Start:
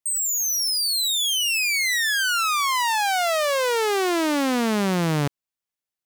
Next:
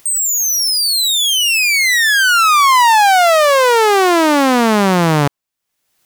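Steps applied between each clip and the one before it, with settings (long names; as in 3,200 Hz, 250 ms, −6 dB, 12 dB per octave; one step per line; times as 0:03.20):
dynamic equaliser 950 Hz, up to +6 dB, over −37 dBFS, Q 0.87
upward compression, threshold −32 dBFS
level +8 dB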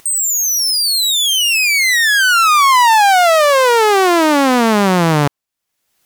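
pitch vibrato 7.5 Hz 14 cents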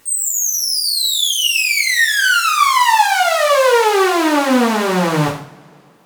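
coupled-rooms reverb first 0.48 s, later 3 s, from −28 dB, DRR −10 dB
level −13 dB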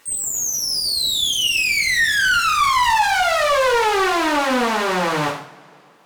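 mid-hump overdrive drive 15 dB, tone 4,800 Hz, clips at −1 dBFS
level −8 dB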